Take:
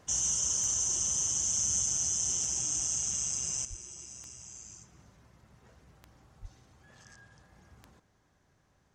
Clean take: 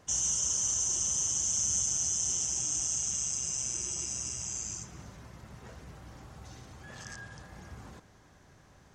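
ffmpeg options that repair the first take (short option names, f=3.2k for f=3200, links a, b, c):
-filter_complex "[0:a]adeclick=t=4,asplit=3[a][b][c];[a]afade=t=out:st=3.69:d=0.02[d];[b]highpass=f=140:w=0.5412,highpass=f=140:w=1.3066,afade=t=in:st=3.69:d=0.02,afade=t=out:st=3.81:d=0.02[e];[c]afade=t=in:st=3.81:d=0.02[f];[d][e][f]amix=inputs=3:normalize=0,asplit=3[g][h][i];[g]afade=t=out:st=6.41:d=0.02[j];[h]highpass=f=140:w=0.5412,highpass=f=140:w=1.3066,afade=t=in:st=6.41:d=0.02,afade=t=out:st=6.53:d=0.02[k];[i]afade=t=in:st=6.53:d=0.02[l];[j][k][l]amix=inputs=3:normalize=0,asetnsamples=n=441:p=0,asendcmd='3.65 volume volume 11dB',volume=0dB"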